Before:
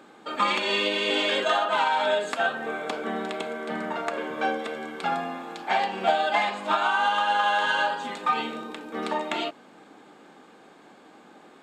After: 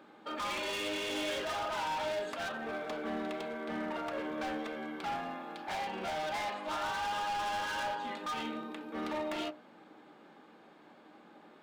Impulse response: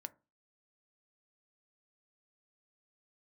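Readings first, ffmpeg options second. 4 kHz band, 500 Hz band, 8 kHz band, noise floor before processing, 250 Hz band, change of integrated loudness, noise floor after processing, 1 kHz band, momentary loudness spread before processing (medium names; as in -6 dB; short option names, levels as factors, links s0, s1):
-11.0 dB, -9.5 dB, -3.5 dB, -52 dBFS, -5.5 dB, -10.5 dB, -58 dBFS, -11.5 dB, 9 LU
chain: -filter_complex "[0:a]equalizer=f=7700:t=o:w=0.79:g=-10.5,volume=25.1,asoftclip=hard,volume=0.0398[s0];[1:a]atrim=start_sample=2205[s1];[s0][s1]afir=irnorm=-1:irlink=0,volume=0.841"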